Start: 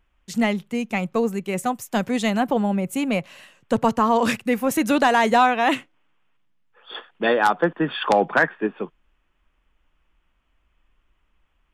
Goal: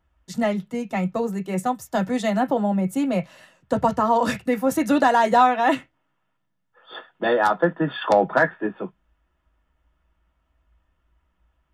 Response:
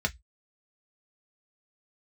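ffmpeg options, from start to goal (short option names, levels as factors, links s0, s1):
-filter_complex "[0:a]asplit=2[s0][s1];[1:a]atrim=start_sample=2205,lowpass=4200[s2];[s1][s2]afir=irnorm=-1:irlink=0,volume=0.562[s3];[s0][s3]amix=inputs=2:normalize=0,volume=0.562"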